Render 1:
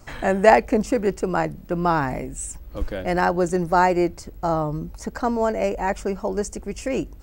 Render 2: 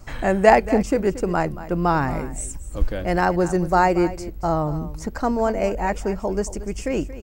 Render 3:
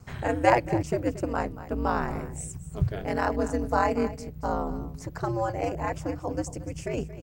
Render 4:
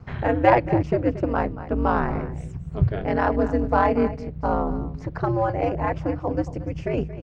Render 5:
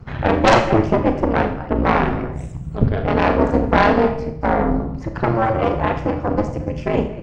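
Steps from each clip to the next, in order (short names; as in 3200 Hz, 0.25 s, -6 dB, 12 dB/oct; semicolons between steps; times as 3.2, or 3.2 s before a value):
low shelf 110 Hz +7.5 dB; echo 0.229 s -15 dB
ring modulator 110 Hz; gain -4 dB
in parallel at -8 dB: overloaded stage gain 21 dB; on the sum: air absorption 270 m; gain +3.5 dB
bin magnitudes rounded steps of 15 dB; added harmonics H 5 -15 dB, 6 -8 dB, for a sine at -3 dBFS; Schroeder reverb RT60 0.54 s, combs from 27 ms, DRR 6 dB; gain -1 dB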